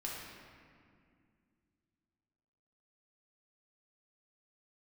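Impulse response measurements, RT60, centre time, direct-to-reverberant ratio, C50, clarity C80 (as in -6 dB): 2.2 s, 108 ms, -5.0 dB, -1.0 dB, 1.0 dB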